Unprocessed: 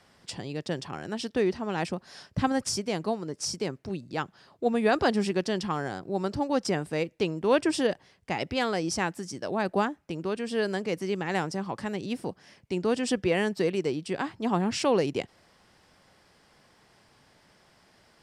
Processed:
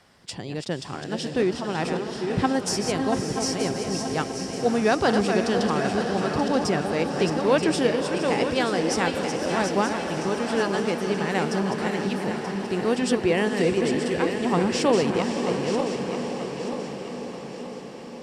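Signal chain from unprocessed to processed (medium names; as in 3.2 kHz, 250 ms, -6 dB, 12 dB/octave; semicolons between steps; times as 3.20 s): backward echo that repeats 465 ms, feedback 64%, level -6 dB; echo that smears into a reverb 561 ms, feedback 68%, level -8 dB; trim +2.5 dB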